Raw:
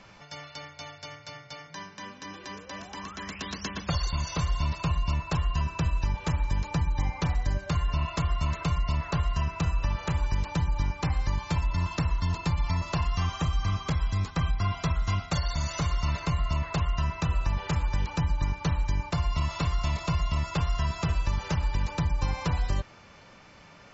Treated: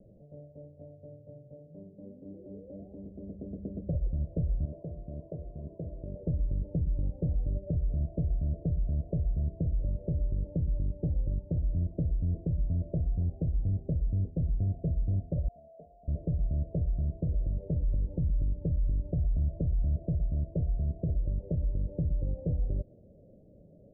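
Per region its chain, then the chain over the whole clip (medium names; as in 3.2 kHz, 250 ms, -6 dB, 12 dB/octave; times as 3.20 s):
4.65–6.23 s: band-pass filter 1.2 kHz, Q 0.57 + band-stop 890 Hz, Q 5.7 + level flattener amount 70%
15.48–16.08 s: vowel filter a + comb 4.5 ms, depth 71%
17.84–19.96 s: bass shelf 110 Hz +8 dB + upward compressor, threshold -30 dBFS
whole clip: steep low-pass 620 Hz 72 dB/octave; peak limiter -22.5 dBFS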